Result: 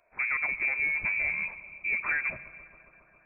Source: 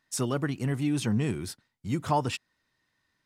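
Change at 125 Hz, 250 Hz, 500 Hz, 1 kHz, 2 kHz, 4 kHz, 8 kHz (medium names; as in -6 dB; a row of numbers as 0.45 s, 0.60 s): -24.5 dB, -25.5 dB, -16.0 dB, -9.5 dB, +15.5 dB, under -35 dB, under -40 dB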